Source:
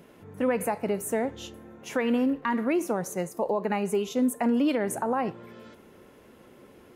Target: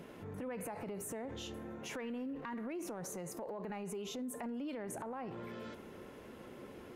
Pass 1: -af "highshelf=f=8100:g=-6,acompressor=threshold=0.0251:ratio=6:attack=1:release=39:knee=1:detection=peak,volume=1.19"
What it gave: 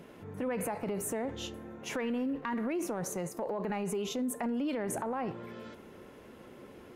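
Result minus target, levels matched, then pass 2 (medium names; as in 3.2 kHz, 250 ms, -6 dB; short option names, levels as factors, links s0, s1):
compression: peak gain reduction -8.5 dB
-af "highshelf=f=8100:g=-6,acompressor=threshold=0.00794:ratio=6:attack=1:release=39:knee=1:detection=peak,volume=1.19"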